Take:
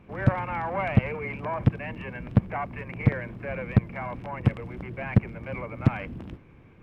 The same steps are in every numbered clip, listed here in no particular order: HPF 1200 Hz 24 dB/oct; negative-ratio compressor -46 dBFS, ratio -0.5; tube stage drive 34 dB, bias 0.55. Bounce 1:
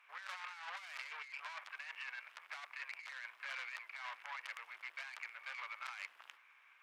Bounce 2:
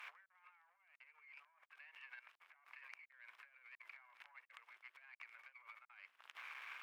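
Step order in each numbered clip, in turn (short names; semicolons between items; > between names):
tube stage > HPF > negative-ratio compressor; negative-ratio compressor > tube stage > HPF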